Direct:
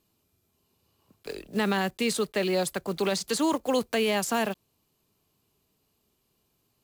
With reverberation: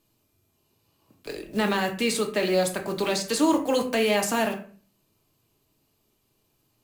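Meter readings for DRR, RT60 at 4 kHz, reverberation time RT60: 2.5 dB, 0.30 s, 0.40 s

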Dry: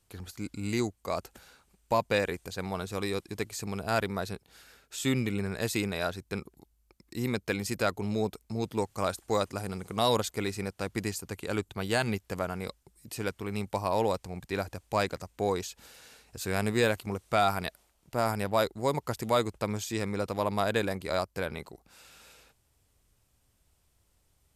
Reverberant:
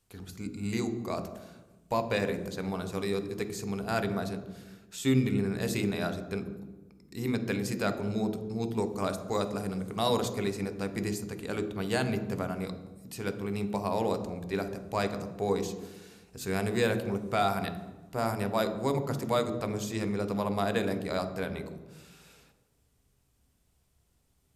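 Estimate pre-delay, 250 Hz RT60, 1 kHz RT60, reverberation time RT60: 3 ms, 1.5 s, 1.1 s, 1.2 s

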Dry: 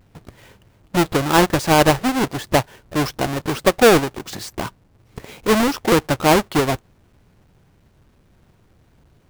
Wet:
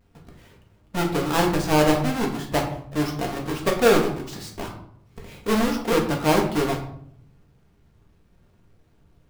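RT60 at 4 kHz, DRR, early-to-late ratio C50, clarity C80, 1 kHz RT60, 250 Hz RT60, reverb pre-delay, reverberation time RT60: 0.40 s, −0.5 dB, 7.5 dB, 11.0 dB, 0.60 s, 0.90 s, 4 ms, 0.65 s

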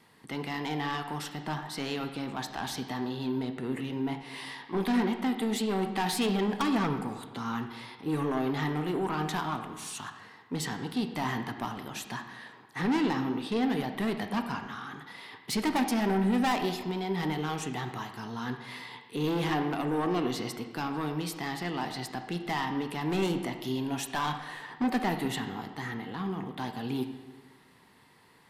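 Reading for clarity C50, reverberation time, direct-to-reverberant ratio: 8.0 dB, 1.3 s, 5.5 dB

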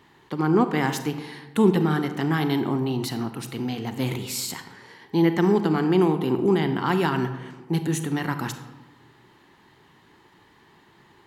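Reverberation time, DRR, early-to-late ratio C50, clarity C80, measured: 1.2 s, 8.5 dB, 9.5 dB, 11.5 dB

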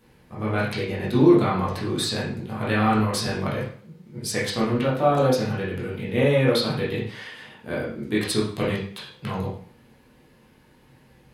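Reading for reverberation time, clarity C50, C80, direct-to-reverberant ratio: 0.50 s, 3.5 dB, 8.5 dB, −7.0 dB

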